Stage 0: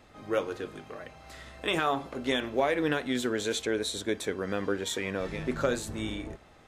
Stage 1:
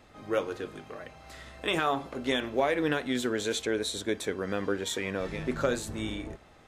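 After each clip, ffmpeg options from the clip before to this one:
ffmpeg -i in.wav -af anull out.wav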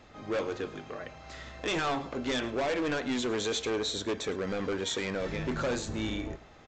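ffmpeg -i in.wav -af "aresample=16000,volume=29dB,asoftclip=hard,volume=-29dB,aresample=44100,aecho=1:1:108:0.112,volume=2dB" out.wav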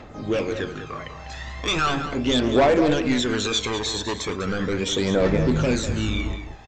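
ffmpeg -i in.wav -filter_complex "[0:a]aphaser=in_gain=1:out_gain=1:delay=1.2:decay=0.61:speed=0.38:type=triangular,asplit=2[link_01][link_02];[link_02]adelay=198.3,volume=-9dB,highshelf=frequency=4000:gain=-4.46[link_03];[link_01][link_03]amix=inputs=2:normalize=0,volume=6dB" out.wav

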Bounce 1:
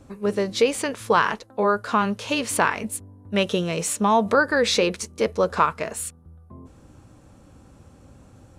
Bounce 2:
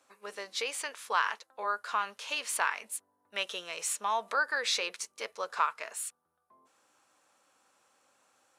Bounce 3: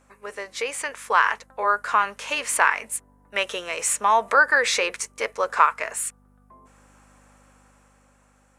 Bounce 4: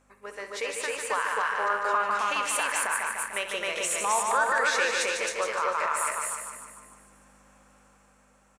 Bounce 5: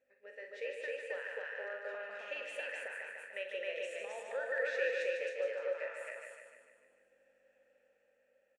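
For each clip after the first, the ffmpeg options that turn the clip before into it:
ffmpeg -i in.wav -af "highpass=1000,volume=-6.5dB" out.wav
ffmpeg -i in.wav -af "aeval=exprs='val(0)+0.000708*(sin(2*PI*50*n/s)+sin(2*PI*2*50*n/s)/2+sin(2*PI*3*50*n/s)/3+sin(2*PI*4*50*n/s)/4+sin(2*PI*5*50*n/s)/5)':channel_layout=same,equalizer=frequency=250:width_type=o:width=1:gain=7,equalizer=frequency=500:width_type=o:width=1:gain=6,equalizer=frequency=1000:width_type=o:width=1:gain=4,equalizer=frequency=2000:width_type=o:width=1:gain=8,equalizer=frequency=4000:width_type=o:width=1:gain=-5,equalizer=frequency=8000:width_type=o:width=1:gain=6,dynaudnorm=framelen=200:gausssize=11:maxgain=6dB" out.wav
ffmpeg -i in.wav -filter_complex "[0:a]asplit=2[link_01][link_02];[link_02]aecho=0:1:149|298|447|596|745|894|1043:0.473|0.26|0.143|0.0787|0.0433|0.0238|0.0131[link_03];[link_01][link_03]amix=inputs=2:normalize=0,alimiter=limit=-13dB:level=0:latency=1:release=107,asplit=2[link_04][link_05];[link_05]aecho=0:1:64.14|265.3:0.282|0.891[link_06];[link_04][link_06]amix=inputs=2:normalize=0,volume=-5dB" out.wav
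ffmpeg -i in.wav -filter_complex "[0:a]asplit=3[link_01][link_02][link_03];[link_01]bandpass=frequency=530:width_type=q:width=8,volume=0dB[link_04];[link_02]bandpass=frequency=1840:width_type=q:width=8,volume=-6dB[link_05];[link_03]bandpass=frequency=2480:width_type=q:width=8,volume=-9dB[link_06];[link_04][link_05][link_06]amix=inputs=3:normalize=0,asplit=2[link_07][link_08];[link_08]adelay=43,volume=-8.5dB[link_09];[link_07][link_09]amix=inputs=2:normalize=0,volume=-1.5dB" out.wav

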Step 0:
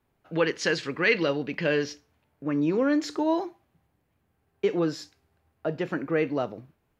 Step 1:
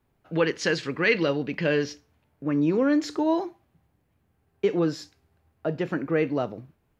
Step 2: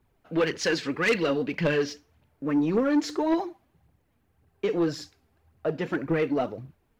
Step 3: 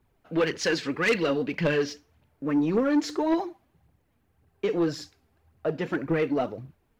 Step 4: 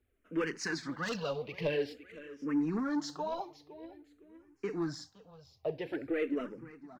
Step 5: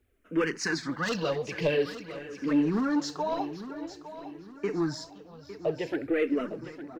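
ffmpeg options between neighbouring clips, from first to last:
ffmpeg -i in.wav -af "lowshelf=frequency=270:gain=4.5" out.wav
ffmpeg -i in.wav -af "aphaser=in_gain=1:out_gain=1:delay=4.7:decay=0.51:speed=1.8:type=triangular,asoftclip=type=tanh:threshold=-17dB" out.wav
ffmpeg -i in.wav -af anull out.wav
ffmpeg -i in.wav -filter_complex "[0:a]aecho=1:1:514|1028|1542:0.158|0.0523|0.0173,asplit=2[link_01][link_02];[link_02]afreqshift=-0.49[link_03];[link_01][link_03]amix=inputs=2:normalize=1,volume=-6dB" out.wav
ffmpeg -i in.wav -af "aecho=1:1:857|1714|2571|3428:0.224|0.0873|0.0341|0.0133,volume=6dB" out.wav

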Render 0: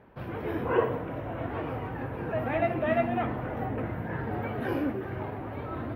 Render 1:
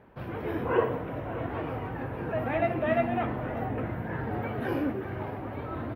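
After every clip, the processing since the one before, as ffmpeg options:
ffmpeg -i in.wav -af "aecho=1:1:583:0.158" out.wav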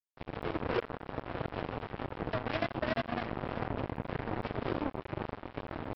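ffmpeg -i in.wav -af "equalizer=frequency=1300:width_type=o:width=0.79:gain=-12.5,acompressor=threshold=-32dB:ratio=5,aresample=11025,acrusher=bits=4:mix=0:aa=0.5,aresample=44100,volume=2.5dB" out.wav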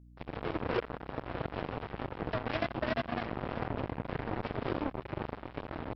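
ffmpeg -i in.wav -af "aeval=exprs='val(0)+0.002*(sin(2*PI*60*n/s)+sin(2*PI*2*60*n/s)/2+sin(2*PI*3*60*n/s)/3+sin(2*PI*4*60*n/s)/4+sin(2*PI*5*60*n/s)/5)':channel_layout=same" out.wav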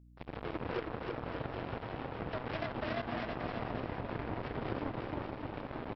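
ffmpeg -i in.wav -af "alimiter=limit=-23.5dB:level=0:latency=1,aecho=1:1:320|576|780.8|944.6|1076:0.631|0.398|0.251|0.158|0.1,volume=-3dB" out.wav

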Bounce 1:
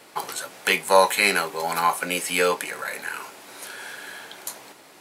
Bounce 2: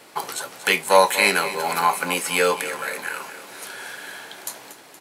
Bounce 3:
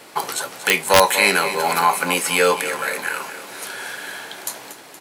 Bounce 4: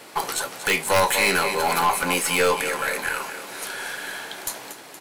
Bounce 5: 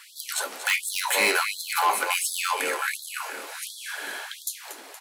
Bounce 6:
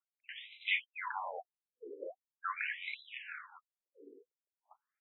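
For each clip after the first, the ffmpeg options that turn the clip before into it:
ffmpeg -i in.wav -af "aecho=1:1:235|470|705|940|1175|1410:0.211|0.12|0.0687|0.0391|0.0223|0.0127,volume=1.5dB" out.wav
ffmpeg -i in.wav -filter_complex "[0:a]asplit=2[link_01][link_02];[link_02]alimiter=limit=-12.5dB:level=0:latency=1:release=73,volume=-1dB[link_03];[link_01][link_03]amix=inputs=2:normalize=0,aeval=exprs='(mod(1.12*val(0)+1,2)-1)/1.12':channel_layout=same,volume=-1dB" out.wav
ffmpeg -i in.wav -af "aeval=exprs='(tanh(5.01*val(0)+0.25)-tanh(0.25))/5.01':channel_layout=same" out.wav
ffmpeg -i in.wav -af "afftfilt=real='re*gte(b*sr/1024,200*pow(3400/200,0.5+0.5*sin(2*PI*1.4*pts/sr)))':imag='im*gte(b*sr/1024,200*pow(3400/200,0.5+0.5*sin(2*PI*1.4*pts/sr)))':win_size=1024:overlap=0.75,volume=-1.5dB" out.wav
ffmpeg -i in.wav -af "agate=range=-34dB:threshold=-37dB:ratio=16:detection=peak,afftfilt=real='re*between(b*sr/1024,340*pow(2900/340,0.5+0.5*sin(2*PI*0.42*pts/sr))/1.41,340*pow(2900/340,0.5+0.5*sin(2*PI*0.42*pts/sr))*1.41)':imag='im*between(b*sr/1024,340*pow(2900/340,0.5+0.5*sin(2*PI*0.42*pts/sr))/1.41,340*pow(2900/340,0.5+0.5*sin(2*PI*0.42*pts/sr))*1.41)':win_size=1024:overlap=0.75,volume=-7dB" out.wav

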